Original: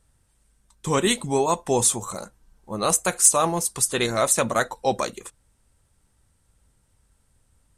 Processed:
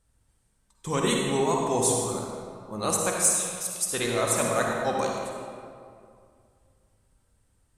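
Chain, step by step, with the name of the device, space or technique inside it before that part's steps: 3.27–3.86 s: steep high-pass 2 kHz; stairwell (reverberation RT60 2.3 s, pre-delay 44 ms, DRR -1 dB); trim -6.5 dB

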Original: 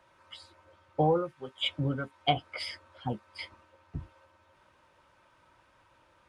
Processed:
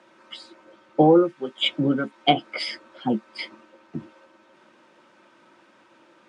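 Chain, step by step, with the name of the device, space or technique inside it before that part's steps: television speaker (cabinet simulation 170–8600 Hz, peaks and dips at 220 Hz +9 dB, 340 Hz +9 dB, 1 kHz -4 dB); trim +8 dB

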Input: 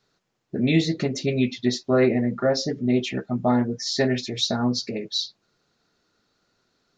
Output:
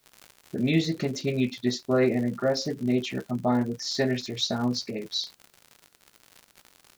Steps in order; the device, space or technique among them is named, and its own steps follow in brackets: vinyl LP (crackle 120 per s -31 dBFS; white noise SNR 41 dB); trim -3.5 dB

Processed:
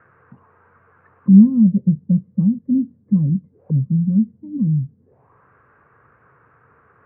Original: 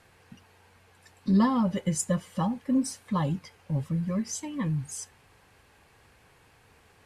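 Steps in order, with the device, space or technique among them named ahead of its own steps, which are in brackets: envelope filter bass rig (touch-sensitive low-pass 210–1500 Hz down, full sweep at -32.5 dBFS; cabinet simulation 89–2300 Hz, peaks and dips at 130 Hz +7 dB, 450 Hz +3 dB, 810 Hz -8 dB); trim +2.5 dB

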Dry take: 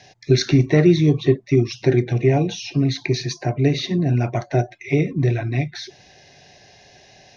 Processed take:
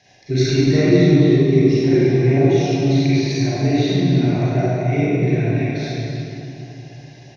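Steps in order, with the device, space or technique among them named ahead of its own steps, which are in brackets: cave (delay 291 ms -10 dB; reverberation RT60 3.1 s, pre-delay 32 ms, DRR -10 dB); trim -8.5 dB

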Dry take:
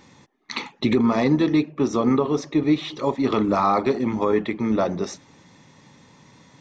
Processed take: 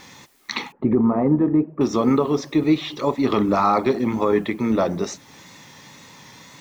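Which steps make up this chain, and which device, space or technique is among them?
noise-reduction cassette on a plain deck (tape noise reduction on one side only encoder only; wow and flutter; white noise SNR 39 dB); 0.72–1.81 s: Bessel low-pass 920 Hz, order 4; trim +1.5 dB

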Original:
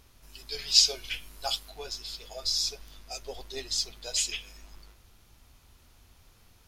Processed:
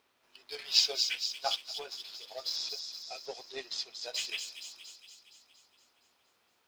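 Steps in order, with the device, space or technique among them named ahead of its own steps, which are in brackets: phone line with mismatched companding (band-pass 380–3500 Hz; companding laws mixed up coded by A); 2.56–3.90 s: low-pass 7.7 kHz 12 dB/octave; feedback echo behind a high-pass 233 ms, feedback 60%, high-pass 4.4 kHz, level -3 dB; trim +2.5 dB

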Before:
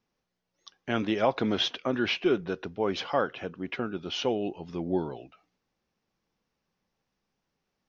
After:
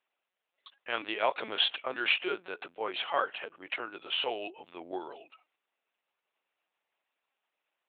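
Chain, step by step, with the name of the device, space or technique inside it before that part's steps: talking toy (LPC vocoder at 8 kHz pitch kept; high-pass 660 Hz 12 dB/octave; peaking EQ 2.6 kHz +4.5 dB 0.48 oct)

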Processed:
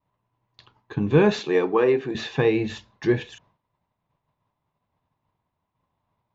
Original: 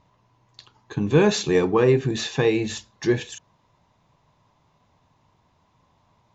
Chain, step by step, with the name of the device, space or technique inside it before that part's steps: hearing-loss simulation (low-pass 3.2 kHz 12 dB/octave; expander -53 dBFS); 1.39–2.15 s: high-pass 300 Hz 12 dB/octave

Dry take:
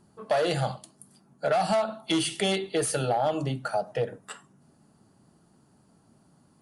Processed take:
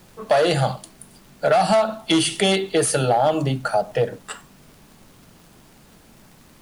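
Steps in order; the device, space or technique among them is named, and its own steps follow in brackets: vinyl LP (crackle; pink noise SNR 30 dB); trim +7.5 dB

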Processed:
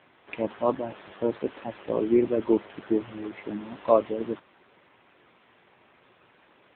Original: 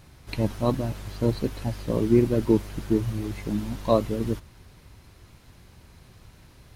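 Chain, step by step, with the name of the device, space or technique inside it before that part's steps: telephone (band-pass 390–3600 Hz; trim +3 dB; AMR-NB 7.95 kbps 8 kHz)

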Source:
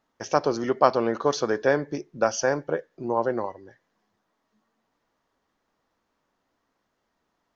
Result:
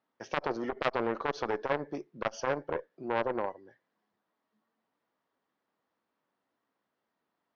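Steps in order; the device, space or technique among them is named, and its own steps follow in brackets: dynamic bell 630 Hz, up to +6 dB, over -33 dBFS, Q 0.73; valve radio (band-pass 140–5600 Hz; valve stage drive 8 dB, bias 0.45; transformer saturation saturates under 1.5 kHz); low-pass 5 kHz 12 dB/octave; trim -5.5 dB

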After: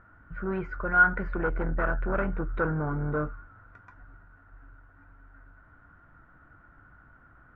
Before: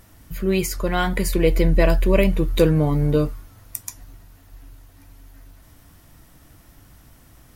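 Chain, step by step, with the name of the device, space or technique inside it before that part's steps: overdriven synthesiser ladder filter (saturation -16 dBFS, distortion -11 dB; four-pole ladder low-pass 1.5 kHz, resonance 85%); trim +4.5 dB

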